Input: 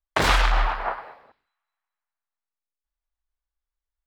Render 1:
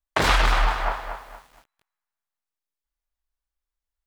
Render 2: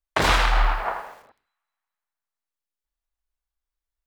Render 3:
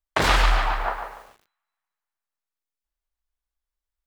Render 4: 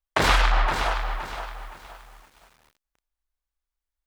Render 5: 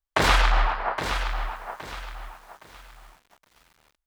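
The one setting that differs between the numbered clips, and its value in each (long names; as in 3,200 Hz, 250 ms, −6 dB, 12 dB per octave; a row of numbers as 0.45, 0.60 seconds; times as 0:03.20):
feedback echo at a low word length, delay time: 233, 81, 143, 518, 817 milliseconds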